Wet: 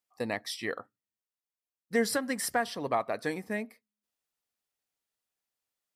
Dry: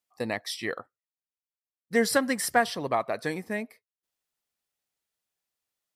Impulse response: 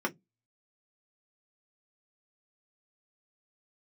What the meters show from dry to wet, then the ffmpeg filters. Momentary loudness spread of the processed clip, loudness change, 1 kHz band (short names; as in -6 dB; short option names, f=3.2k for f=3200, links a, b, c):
8 LU, -4.0 dB, -4.5 dB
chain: -filter_complex "[0:a]alimiter=limit=-14.5dB:level=0:latency=1:release=292,asplit=2[a][b];[1:a]atrim=start_sample=2205,asetrate=36603,aresample=44100[c];[b][c]afir=irnorm=-1:irlink=0,volume=-24dB[d];[a][d]amix=inputs=2:normalize=0,volume=-3dB"